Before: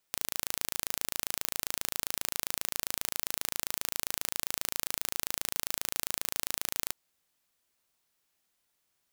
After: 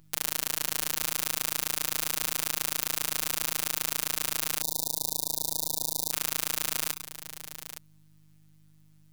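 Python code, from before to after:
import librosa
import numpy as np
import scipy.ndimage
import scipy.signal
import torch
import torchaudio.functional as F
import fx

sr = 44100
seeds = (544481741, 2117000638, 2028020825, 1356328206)

p1 = x + fx.echo_multitap(x, sr, ms=(102, 865), db=(-11.5, -11.5), dry=0)
p2 = fx.add_hum(p1, sr, base_hz=50, snr_db=24)
p3 = fx.robotise(p2, sr, hz=156.0)
p4 = fx.spec_erase(p3, sr, start_s=4.61, length_s=1.5, low_hz=970.0, high_hz=3500.0)
y = F.gain(torch.from_numpy(p4), 6.0).numpy()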